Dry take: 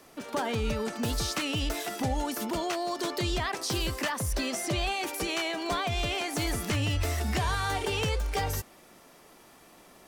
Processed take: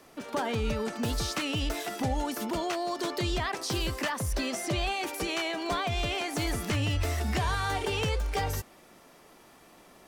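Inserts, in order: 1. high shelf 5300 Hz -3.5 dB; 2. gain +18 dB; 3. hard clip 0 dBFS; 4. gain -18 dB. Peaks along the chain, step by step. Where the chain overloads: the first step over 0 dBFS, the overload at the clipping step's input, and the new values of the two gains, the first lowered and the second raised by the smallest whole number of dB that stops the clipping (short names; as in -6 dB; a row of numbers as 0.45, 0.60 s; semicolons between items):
-20.0, -2.0, -2.0, -20.0 dBFS; no overload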